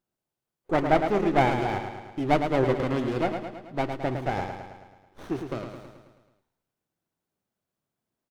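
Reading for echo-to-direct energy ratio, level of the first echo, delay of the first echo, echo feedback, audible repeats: −5.0 dB, −7.0 dB, 108 ms, 58%, 6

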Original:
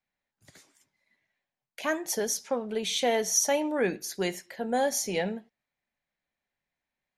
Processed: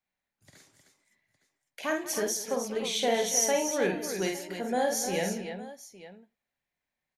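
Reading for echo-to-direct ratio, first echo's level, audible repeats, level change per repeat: −2.0 dB, −4.5 dB, 5, repeats not evenly spaced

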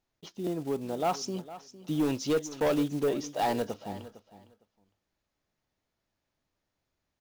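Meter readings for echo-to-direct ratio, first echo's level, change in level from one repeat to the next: −16.0 dB, −16.0 dB, −15.5 dB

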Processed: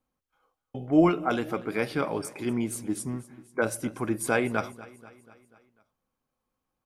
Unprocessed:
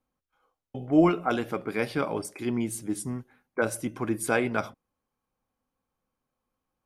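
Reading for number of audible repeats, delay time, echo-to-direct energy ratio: 4, 244 ms, −17.5 dB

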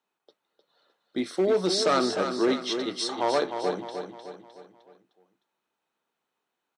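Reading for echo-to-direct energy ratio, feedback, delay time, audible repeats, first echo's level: −6.5 dB, 46%, 306 ms, 5, −7.5 dB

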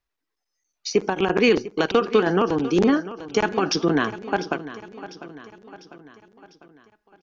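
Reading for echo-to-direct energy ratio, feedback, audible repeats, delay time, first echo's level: −13.5 dB, 51%, 4, 699 ms, −15.0 dB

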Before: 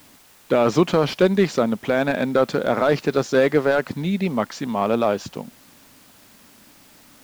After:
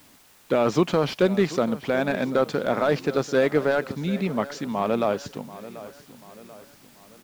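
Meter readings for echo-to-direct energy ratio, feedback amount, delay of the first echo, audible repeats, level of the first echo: −15.5 dB, 48%, 737 ms, 3, −16.5 dB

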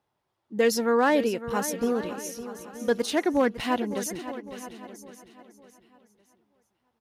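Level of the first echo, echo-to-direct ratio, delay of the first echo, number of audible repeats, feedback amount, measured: −13.0 dB, −10.5 dB, 556 ms, 6, repeats not evenly spaced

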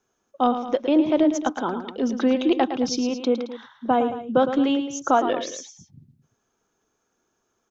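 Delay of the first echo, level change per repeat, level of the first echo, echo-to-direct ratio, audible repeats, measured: 110 ms, −5.5 dB, −9.5 dB, −8.5 dB, 2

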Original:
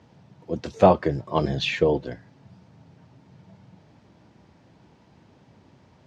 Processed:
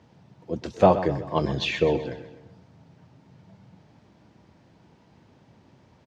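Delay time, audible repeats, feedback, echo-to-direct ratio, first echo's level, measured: 128 ms, 4, 46%, −11.5 dB, −12.5 dB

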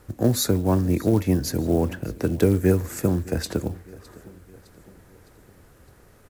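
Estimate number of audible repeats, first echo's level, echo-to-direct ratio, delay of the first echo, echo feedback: 3, −21.5 dB, −20.0 dB, 610 ms, 53%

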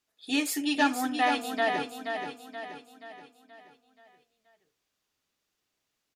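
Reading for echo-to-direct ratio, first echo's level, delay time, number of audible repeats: −5.5 dB, −6.5 dB, 478 ms, 5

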